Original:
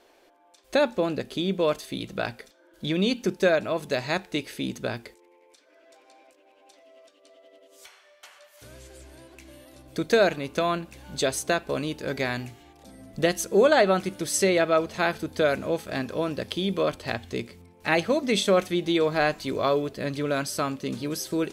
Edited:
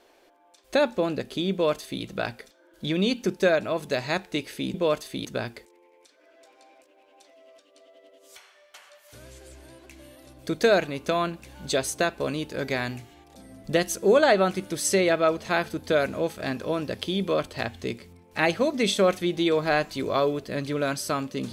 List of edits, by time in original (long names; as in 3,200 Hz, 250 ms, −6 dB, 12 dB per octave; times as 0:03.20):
0:01.52–0:02.03: duplicate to 0:04.74